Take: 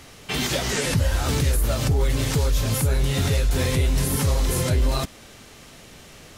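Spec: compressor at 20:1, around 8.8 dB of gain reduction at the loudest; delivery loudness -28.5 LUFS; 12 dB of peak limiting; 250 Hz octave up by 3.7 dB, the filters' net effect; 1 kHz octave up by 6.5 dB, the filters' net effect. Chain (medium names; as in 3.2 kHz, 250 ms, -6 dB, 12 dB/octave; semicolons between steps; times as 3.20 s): peaking EQ 250 Hz +4.5 dB; peaking EQ 1 kHz +8 dB; compression 20:1, threshold -24 dBFS; trim +6.5 dB; peak limiter -19.5 dBFS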